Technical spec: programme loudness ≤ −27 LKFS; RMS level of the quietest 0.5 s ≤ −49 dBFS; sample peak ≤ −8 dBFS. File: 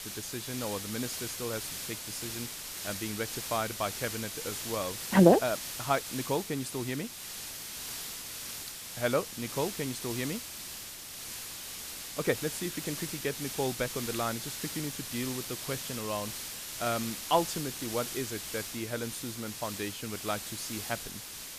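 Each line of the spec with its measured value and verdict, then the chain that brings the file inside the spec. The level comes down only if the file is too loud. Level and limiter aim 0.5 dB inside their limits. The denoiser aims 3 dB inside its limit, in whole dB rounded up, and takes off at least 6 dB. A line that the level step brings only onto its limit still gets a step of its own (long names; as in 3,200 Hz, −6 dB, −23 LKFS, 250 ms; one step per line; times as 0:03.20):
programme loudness −33.0 LKFS: in spec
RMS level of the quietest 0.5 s −43 dBFS: out of spec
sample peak −6.0 dBFS: out of spec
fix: broadband denoise 9 dB, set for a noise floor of −43 dBFS
brickwall limiter −8.5 dBFS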